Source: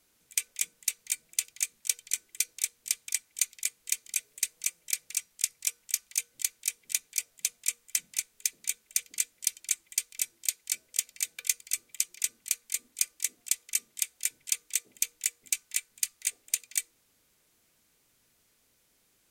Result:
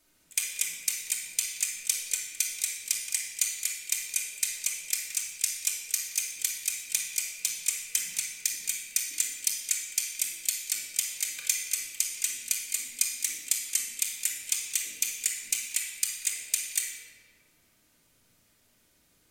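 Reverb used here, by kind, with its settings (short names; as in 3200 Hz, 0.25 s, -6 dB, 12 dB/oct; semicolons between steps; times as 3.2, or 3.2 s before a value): shoebox room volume 1900 m³, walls mixed, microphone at 2.7 m; gain -1 dB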